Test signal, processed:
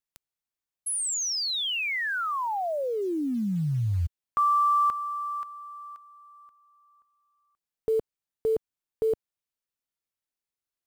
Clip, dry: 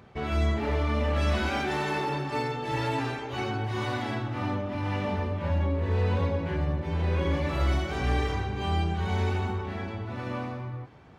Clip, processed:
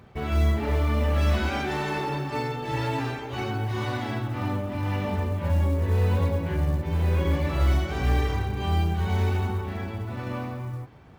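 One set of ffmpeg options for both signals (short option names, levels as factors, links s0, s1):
-af "lowshelf=f=140:g=5.5,acrusher=bits=8:mode=log:mix=0:aa=0.000001"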